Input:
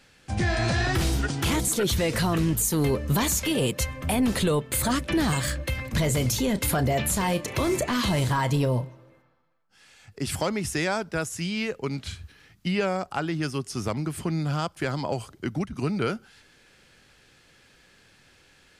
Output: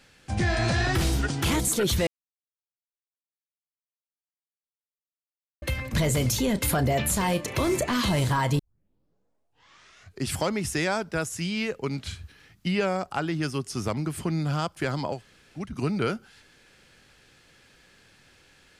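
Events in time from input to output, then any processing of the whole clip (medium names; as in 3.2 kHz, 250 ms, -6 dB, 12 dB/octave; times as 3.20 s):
2.07–5.62 s: mute
8.59 s: tape start 1.69 s
15.15–15.61 s: room tone, crossfade 0.16 s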